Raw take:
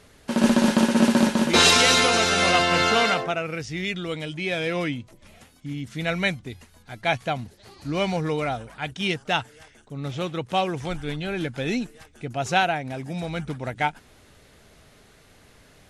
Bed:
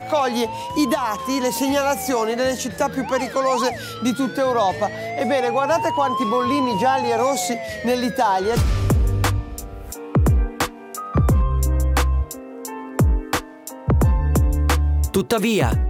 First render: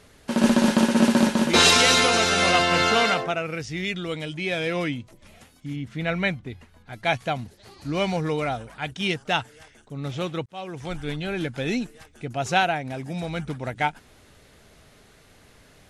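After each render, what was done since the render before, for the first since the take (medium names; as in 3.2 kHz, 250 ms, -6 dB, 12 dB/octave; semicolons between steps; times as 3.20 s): 5.76–6.93 s: tone controls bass +1 dB, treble -11 dB; 10.46–11.03 s: fade in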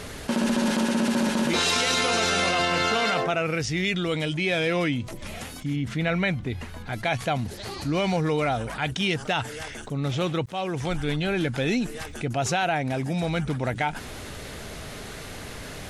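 peak limiter -15.5 dBFS, peak gain reduction 10.5 dB; level flattener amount 50%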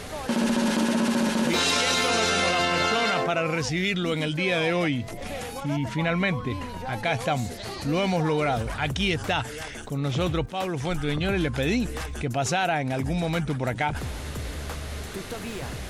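add bed -17.5 dB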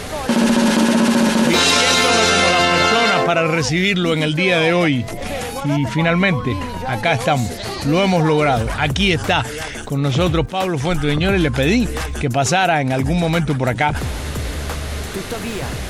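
trim +9 dB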